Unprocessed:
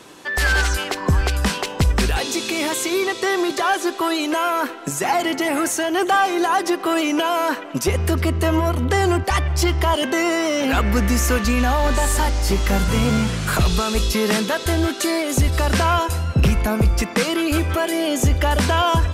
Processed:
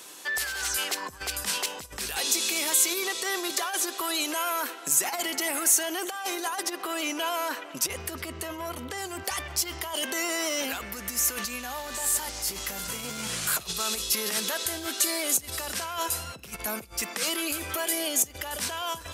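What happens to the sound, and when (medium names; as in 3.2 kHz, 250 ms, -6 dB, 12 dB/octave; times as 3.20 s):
6.63–8.98 s: treble shelf 6.1 kHz -7 dB
whole clip: compressor with a negative ratio -20 dBFS, ratio -0.5; peak limiter -13.5 dBFS; RIAA curve recording; trim -8.5 dB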